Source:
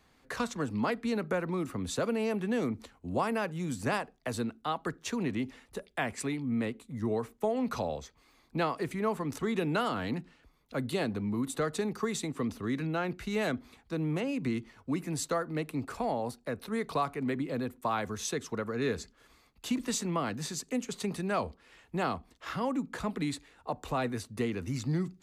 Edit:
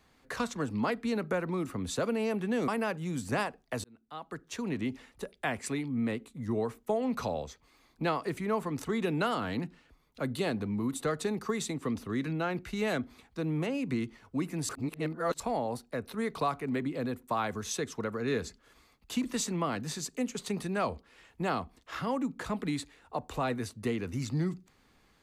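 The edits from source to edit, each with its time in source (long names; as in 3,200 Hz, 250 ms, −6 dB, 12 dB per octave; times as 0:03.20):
0:02.68–0:03.22: remove
0:04.38–0:05.42: fade in
0:15.23–0:15.94: reverse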